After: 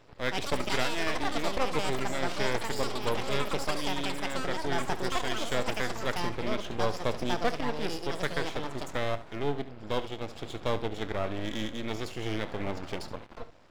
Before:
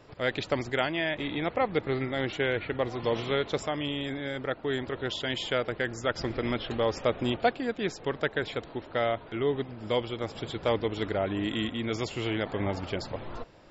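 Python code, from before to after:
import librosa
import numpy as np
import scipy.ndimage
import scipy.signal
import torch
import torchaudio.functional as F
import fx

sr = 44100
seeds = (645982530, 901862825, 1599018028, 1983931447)

y = np.maximum(x, 0.0)
y = fx.echo_pitch(y, sr, ms=185, semitones=7, count=2, db_per_echo=-3.0)
y = fx.room_early_taps(y, sr, ms=(28, 71), db=(-16.5, -14.5))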